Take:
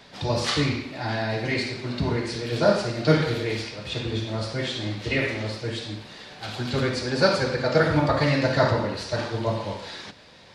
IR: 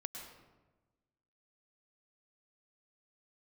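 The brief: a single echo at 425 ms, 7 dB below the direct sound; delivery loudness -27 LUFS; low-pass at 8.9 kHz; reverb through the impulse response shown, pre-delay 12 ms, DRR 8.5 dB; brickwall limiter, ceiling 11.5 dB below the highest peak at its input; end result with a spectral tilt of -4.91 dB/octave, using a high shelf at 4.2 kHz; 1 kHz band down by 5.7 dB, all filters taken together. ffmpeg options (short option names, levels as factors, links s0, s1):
-filter_complex "[0:a]lowpass=8900,equalizer=f=1000:t=o:g=-8.5,highshelf=f=4200:g=5,alimiter=limit=0.106:level=0:latency=1,aecho=1:1:425:0.447,asplit=2[s0][s1];[1:a]atrim=start_sample=2205,adelay=12[s2];[s1][s2]afir=irnorm=-1:irlink=0,volume=0.473[s3];[s0][s3]amix=inputs=2:normalize=0,volume=1.12"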